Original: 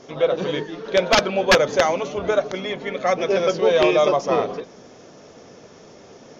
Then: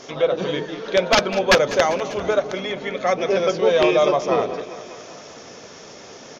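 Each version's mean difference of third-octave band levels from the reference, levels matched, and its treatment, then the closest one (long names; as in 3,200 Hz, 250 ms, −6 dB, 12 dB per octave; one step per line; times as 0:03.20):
2.5 dB: on a send: repeating echo 197 ms, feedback 58%, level −16 dB
on the sum: one half of a high-frequency compander encoder only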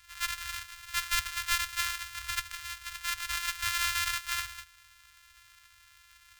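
20.5 dB: samples sorted by size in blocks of 128 samples
inverse Chebyshev band-stop filter 200–480 Hz, stop band 70 dB
level −7 dB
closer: first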